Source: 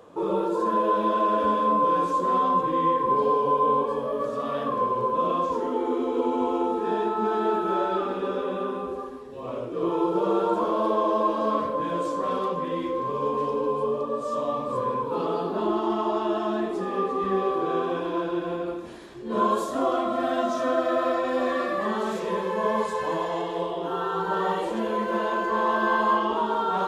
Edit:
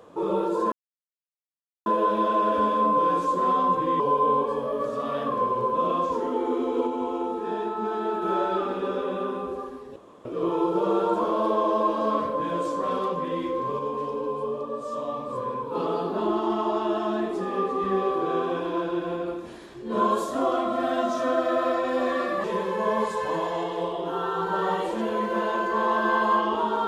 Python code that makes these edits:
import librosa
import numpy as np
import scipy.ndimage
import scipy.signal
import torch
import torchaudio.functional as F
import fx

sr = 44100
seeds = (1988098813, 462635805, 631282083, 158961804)

y = fx.edit(x, sr, fx.insert_silence(at_s=0.72, length_s=1.14),
    fx.cut(start_s=2.86, length_s=0.54),
    fx.clip_gain(start_s=6.27, length_s=1.35, db=-3.5),
    fx.room_tone_fill(start_s=9.36, length_s=0.29),
    fx.clip_gain(start_s=13.19, length_s=1.96, db=-3.5),
    fx.cut(start_s=21.84, length_s=0.38), tone=tone)